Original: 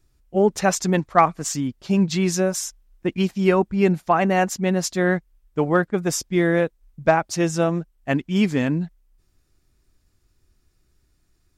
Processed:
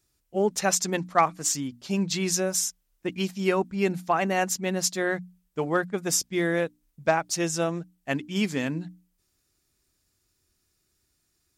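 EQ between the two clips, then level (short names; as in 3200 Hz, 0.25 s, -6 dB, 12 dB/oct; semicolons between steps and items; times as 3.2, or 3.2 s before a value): HPF 120 Hz 6 dB/oct; high shelf 3200 Hz +9.5 dB; notches 60/120/180/240/300 Hz; -6.0 dB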